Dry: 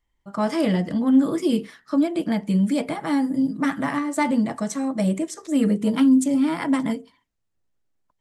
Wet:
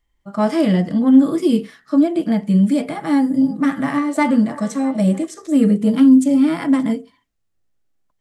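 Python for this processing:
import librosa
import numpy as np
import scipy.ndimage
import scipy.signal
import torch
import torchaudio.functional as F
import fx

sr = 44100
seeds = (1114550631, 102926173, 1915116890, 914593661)

y = fx.notch(x, sr, hz=940.0, q=11.0)
y = fx.echo_stepped(y, sr, ms=328, hz=520.0, octaves=1.4, feedback_pct=70, wet_db=-10.5, at=(3.08, 5.27))
y = fx.hpss(y, sr, part='percussive', gain_db=-8)
y = y * 10.0 ** (6.0 / 20.0)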